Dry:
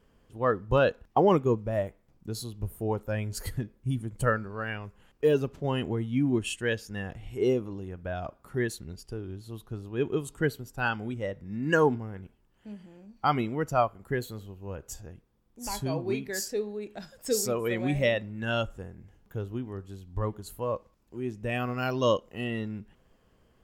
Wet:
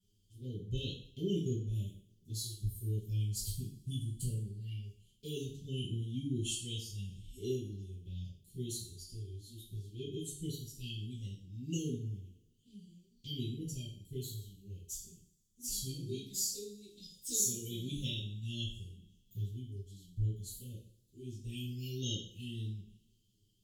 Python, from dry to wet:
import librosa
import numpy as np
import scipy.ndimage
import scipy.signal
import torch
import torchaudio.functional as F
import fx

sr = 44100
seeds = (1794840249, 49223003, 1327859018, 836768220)

y = fx.env_flanger(x, sr, rest_ms=10.4, full_db=-25.5)
y = scipy.signal.sosfilt(scipy.signal.cheby1(4, 1.0, [390.0, 3200.0], 'bandstop', fs=sr, output='sos'), y)
y = fx.tone_stack(y, sr, knobs='5-5-5')
y = fx.rev_double_slope(y, sr, seeds[0], early_s=0.49, late_s=1.7, knee_db=-25, drr_db=-7.5)
y = y * 10.0 ** (1.5 / 20.0)